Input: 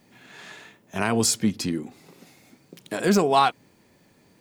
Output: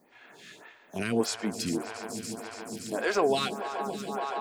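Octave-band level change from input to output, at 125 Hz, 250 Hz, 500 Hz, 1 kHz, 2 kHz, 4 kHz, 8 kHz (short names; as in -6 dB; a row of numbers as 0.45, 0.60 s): -9.0, -6.5, -3.0, -7.5, -3.0, -5.0, -9.0 dB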